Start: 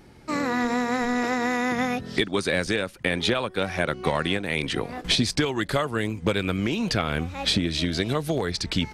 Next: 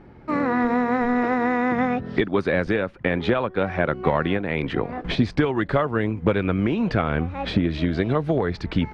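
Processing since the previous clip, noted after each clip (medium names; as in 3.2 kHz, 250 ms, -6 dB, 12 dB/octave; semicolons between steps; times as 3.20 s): low-pass 1.7 kHz 12 dB/octave; trim +4 dB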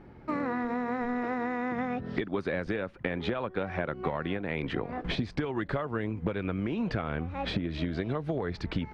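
compression, threshold -23 dBFS, peak gain reduction 9.5 dB; trim -4 dB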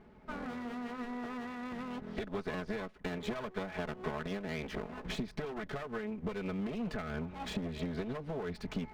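comb filter that takes the minimum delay 4.7 ms; trim -5.5 dB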